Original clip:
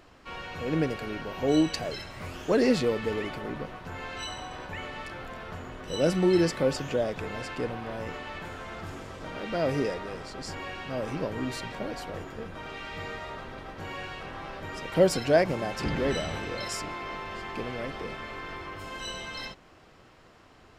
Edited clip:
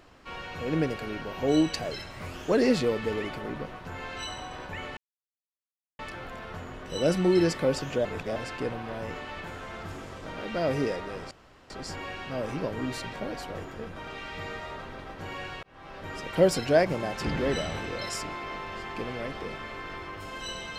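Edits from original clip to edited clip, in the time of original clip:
4.97 insert silence 1.02 s
7.03–7.34 reverse
10.29 insert room tone 0.39 s
14.22–14.69 fade in

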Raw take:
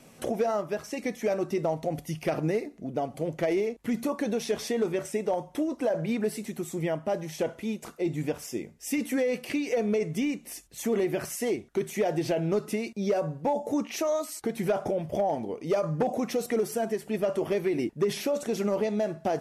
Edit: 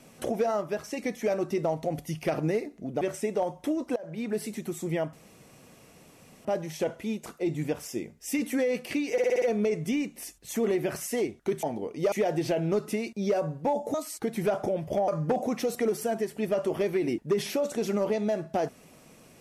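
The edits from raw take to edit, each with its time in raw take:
3.01–4.92 cut
5.87–6.36 fade in, from -19.5 dB
7.04 insert room tone 1.32 s
9.71 stutter 0.06 s, 6 plays
13.74–14.16 cut
15.3–15.79 move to 11.92

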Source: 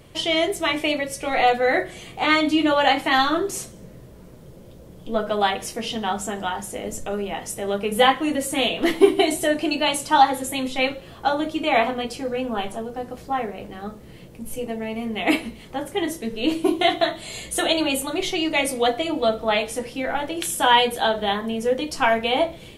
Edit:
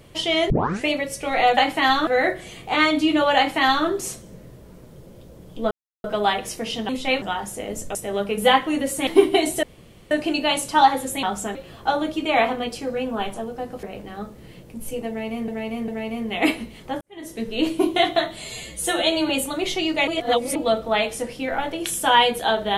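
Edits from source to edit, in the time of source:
0.5 tape start 0.37 s
2.86–3.36 copy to 1.57
5.21 insert silence 0.33 s
6.06–6.38 swap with 10.6–10.93
7.11–7.49 cut
8.61–8.92 cut
9.48 insert room tone 0.48 s
13.21–13.48 cut
14.73–15.13 loop, 3 plays
15.86–16.24 fade in quadratic
17.29–17.86 stretch 1.5×
18.64–19.12 reverse

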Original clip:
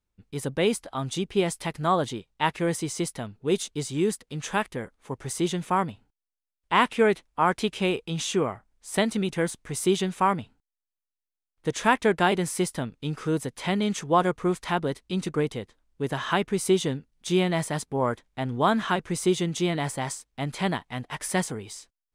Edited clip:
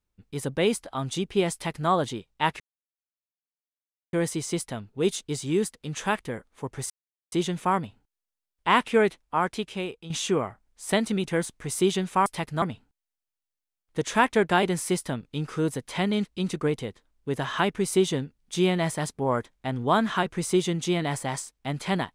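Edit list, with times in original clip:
1.53–1.89 copy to 10.31
2.6 insert silence 1.53 s
5.37 insert silence 0.42 s
7.06–8.15 fade out, to -11 dB
13.94–14.98 cut

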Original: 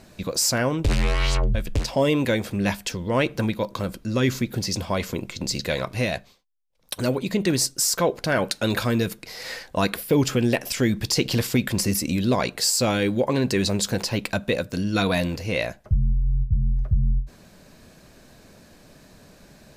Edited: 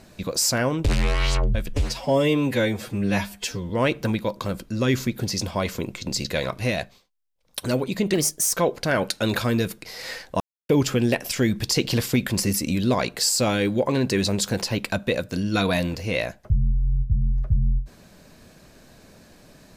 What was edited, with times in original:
1.73–3.04 stretch 1.5×
7.48–7.94 speed 116%
9.81–10.1 mute

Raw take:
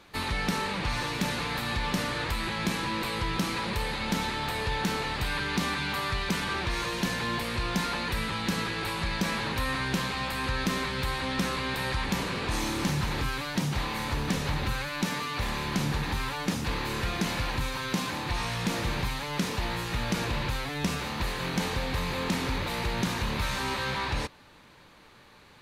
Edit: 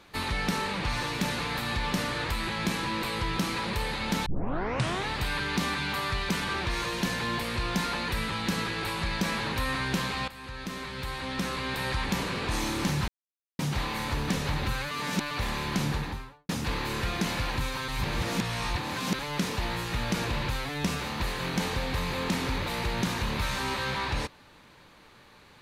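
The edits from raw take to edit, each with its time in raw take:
4.26 tape start 0.83 s
10.28–11.93 fade in, from -14.5 dB
13.08–13.59 mute
14.91–15.31 reverse
15.86–16.49 studio fade out
17.88–19.19 reverse

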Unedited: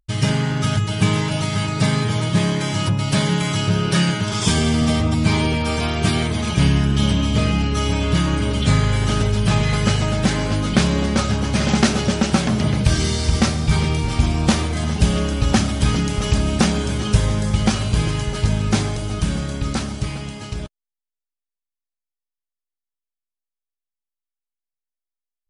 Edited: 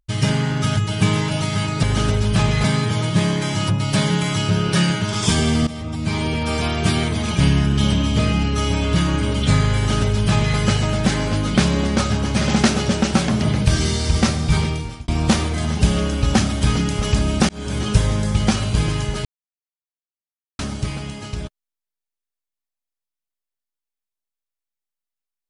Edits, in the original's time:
4.86–5.77 fade in, from -15.5 dB
8.95–9.76 copy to 1.83
13.76–14.27 fade out
16.68–16.97 fade in
18.44–19.78 mute

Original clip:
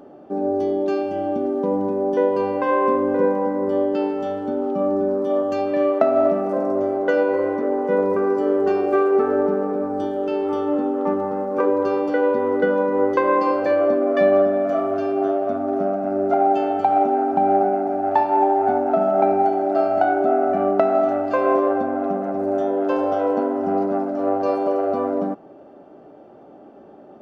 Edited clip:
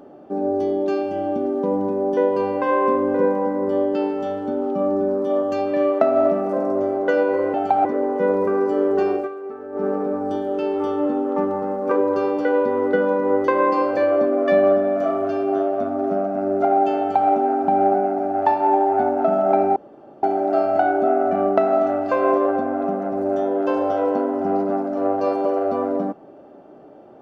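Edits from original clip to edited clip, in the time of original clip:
8.83–9.56 dip -15 dB, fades 0.15 s
16.68–16.99 copy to 7.54
19.45 insert room tone 0.47 s

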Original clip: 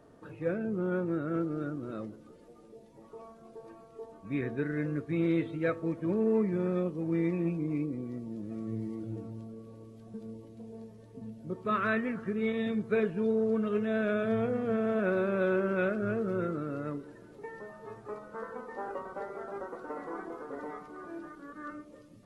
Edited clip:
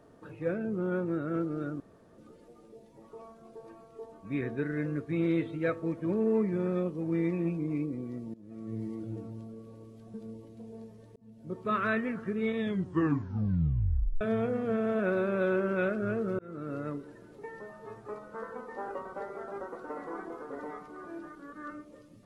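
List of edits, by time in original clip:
1.8–2.18 room tone
8.34–8.82 fade in, from -19 dB
11.16–11.56 fade in
12.59 tape stop 1.62 s
16.39–16.73 fade in

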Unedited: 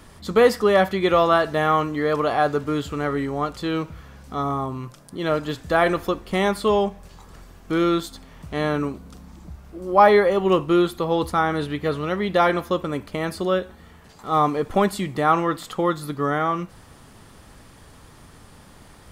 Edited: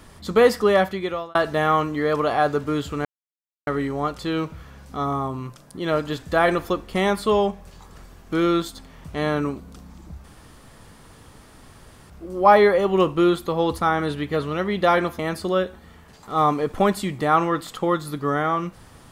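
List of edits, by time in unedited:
0.71–1.35 fade out
3.05 insert silence 0.62 s
9.62 insert room tone 1.86 s
12.71–13.15 cut

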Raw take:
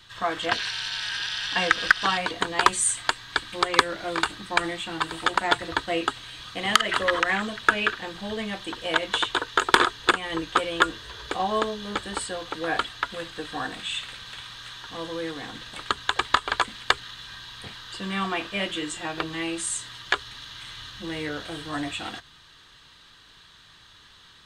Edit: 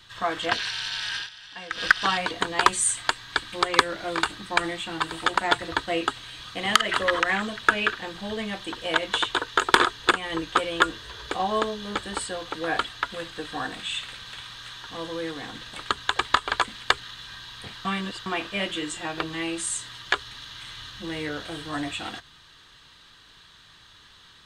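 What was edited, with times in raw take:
1.17–1.83 dip -15 dB, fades 0.13 s
17.85–18.26 reverse

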